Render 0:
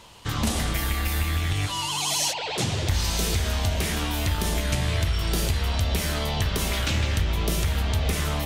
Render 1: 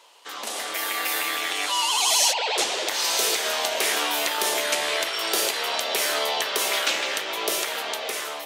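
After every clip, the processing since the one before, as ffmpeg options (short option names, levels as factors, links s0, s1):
-af "highpass=f=420:w=0.5412,highpass=f=420:w=1.3066,dynaudnorm=f=240:g=7:m=3.76,volume=0.631"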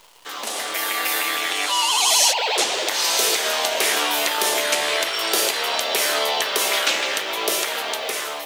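-af "acrusher=bits=9:dc=4:mix=0:aa=0.000001,volume=1.5"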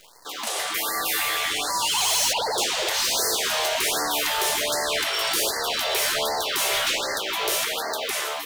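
-af "asoftclip=type=hard:threshold=0.1,afftfilt=real='re*(1-between(b*sr/1024,220*pow(3000/220,0.5+0.5*sin(2*PI*1.3*pts/sr))/1.41,220*pow(3000/220,0.5+0.5*sin(2*PI*1.3*pts/sr))*1.41))':imag='im*(1-between(b*sr/1024,220*pow(3000/220,0.5+0.5*sin(2*PI*1.3*pts/sr))/1.41,220*pow(3000/220,0.5+0.5*sin(2*PI*1.3*pts/sr))*1.41))':win_size=1024:overlap=0.75"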